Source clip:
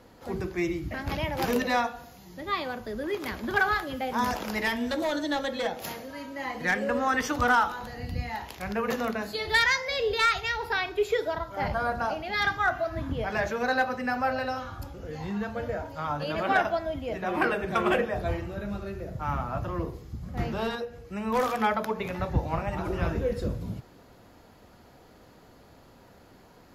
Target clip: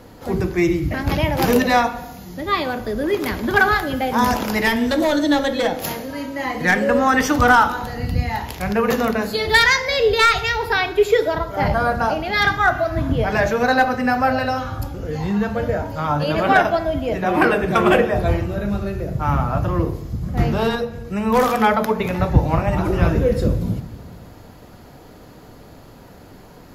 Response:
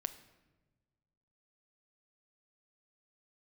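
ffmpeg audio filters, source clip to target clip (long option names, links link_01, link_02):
-filter_complex "[0:a]asplit=2[link_01][link_02];[link_02]lowshelf=frequency=460:gain=6[link_03];[1:a]atrim=start_sample=2205,highshelf=frequency=8900:gain=7[link_04];[link_03][link_04]afir=irnorm=-1:irlink=0,volume=10dB[link_05];[link_01][link_05]amix=inputs=2:normalize=0,volume=-3.5dB"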